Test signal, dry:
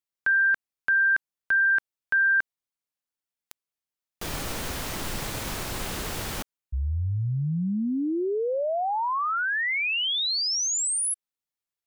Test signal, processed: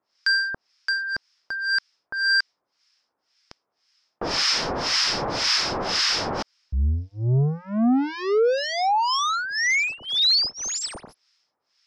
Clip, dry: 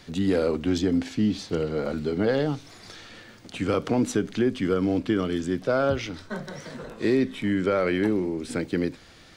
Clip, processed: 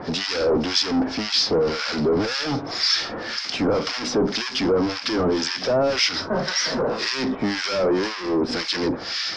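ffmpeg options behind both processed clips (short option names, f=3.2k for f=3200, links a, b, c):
-filter_complex "[0:a]asplit=2[a][b];[b]highpass=f=720:p=1,volume=36dB,asoftclip=type=tanh:threshold=-11dB[c];[a][c]amix=inputs=2:normalize=0,lowpass=f=1.6k:p=1,volume=-6dB,acrossover=split=1200[d][e];[d]aeval=exprs='val(0)*(1-1/2+1/2*cos(2*PI*1.9*n/s))':c=same[f];[e]aeval=exprs='val(0)*(1-1/2-1/2*cos(2*PI*1.9*n/s))':c=same[g];[f][g]amix=inputs=2:normalize=0,lowpass=f=5.2k:t=q:w=9.7"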